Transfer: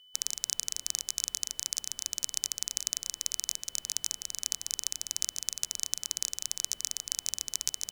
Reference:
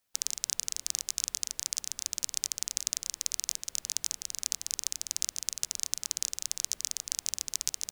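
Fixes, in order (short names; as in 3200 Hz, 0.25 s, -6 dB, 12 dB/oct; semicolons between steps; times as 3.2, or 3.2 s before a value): notch 3000 Hz, Q 30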